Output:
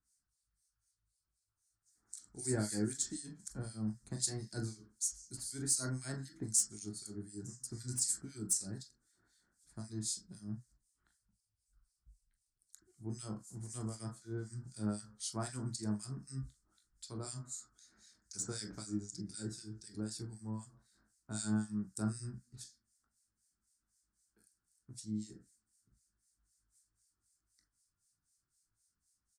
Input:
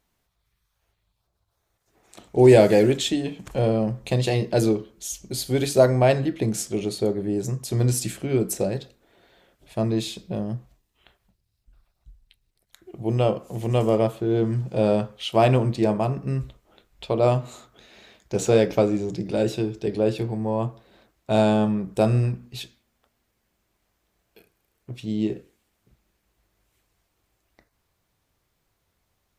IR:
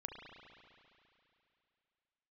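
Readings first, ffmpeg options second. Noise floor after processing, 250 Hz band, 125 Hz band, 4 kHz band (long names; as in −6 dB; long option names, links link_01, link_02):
below −85 dBFS, −17.0 dB, −18.5 dB, −14.0 dB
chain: -filter_complex "[0:a]firequalizer=gain_entry='entry(290,0);entry(520,-18);entry(1400,3);entry(2700,-26);entry(4700,2);entry(9000,14);entry(13000,-10)':delay=0.05:min_phase=1,acrossover=split=380|580|2200[link_01][link_02][link_03][link_04];[link_04]aeval=exprs='0.708*sin(PI/2*2*val(0)/0.708)':channel_layout=same[link_05];[link_01][link_02][link_03][link_05]amix=inputs=4:normalize=0,acrossover=split=1900[link_06][link_07];[link_06]aeval=exprs='val(0)*(1-1/2+1/2*cos(2*PI*3.9*n/s))':channel_layout=same[link_08];[link_07]aeval=exprs='val(0)*(1-1/2-1/2*cos(2*PI*3.9*n/s))':channel_layout=same[link_09];[link_08][link_09]amix=inputs=2:normalize=0[link_10];[1:a]atrim=start_sample=2205,atrim=end_sample=3969,asetrate=79380,aresample=44100[link_11];[link_10][link_11]afir=irnorm=-1:irlink=0,volume=-3dB"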